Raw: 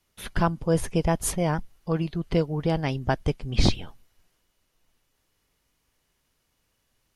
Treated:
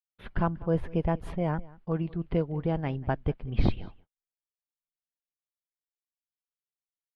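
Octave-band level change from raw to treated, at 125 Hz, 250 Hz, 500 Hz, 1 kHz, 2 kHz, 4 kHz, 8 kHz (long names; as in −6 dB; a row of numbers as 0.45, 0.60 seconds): −3.5 dB, −3.5 dB, −4.5 dB, −5.0 dB, −7.0 dB, −15.5 dB, below −30 dB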